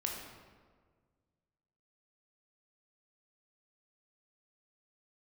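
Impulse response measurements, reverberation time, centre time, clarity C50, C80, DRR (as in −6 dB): 1.6 s, 61 ms, 2.5 dB, 4.5 dB, −0.5 dB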